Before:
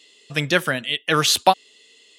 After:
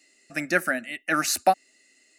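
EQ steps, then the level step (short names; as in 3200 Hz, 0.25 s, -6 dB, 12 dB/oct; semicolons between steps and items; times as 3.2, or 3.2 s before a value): fixed phaser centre 670 Hz, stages 8; -1.5 dB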